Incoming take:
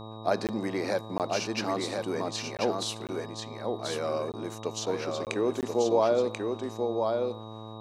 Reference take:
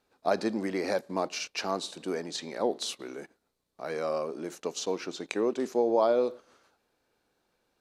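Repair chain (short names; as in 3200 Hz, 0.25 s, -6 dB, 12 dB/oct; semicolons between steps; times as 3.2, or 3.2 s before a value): de-hum 109.9 Hz, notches 11; notch 3800 Hz, Q 30; interpolate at 0.47/1.18/2.57/3.07/4.32/5.25/5.61, 18 ms; inverse comb 1.037 s -4 dB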